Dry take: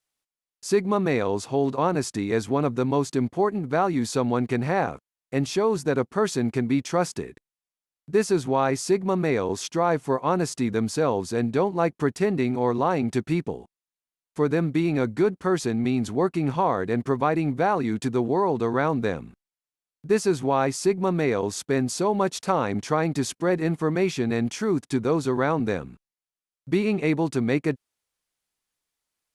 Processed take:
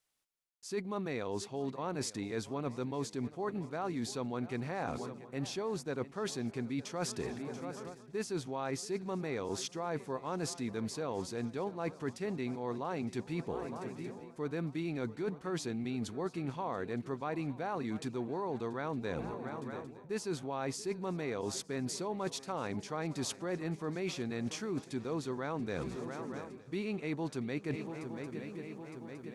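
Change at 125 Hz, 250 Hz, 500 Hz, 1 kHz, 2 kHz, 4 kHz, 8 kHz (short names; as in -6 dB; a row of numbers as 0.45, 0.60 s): -12.5, -13.0, -14.0, -14.5, -12.5, -8.0, -9.0 dB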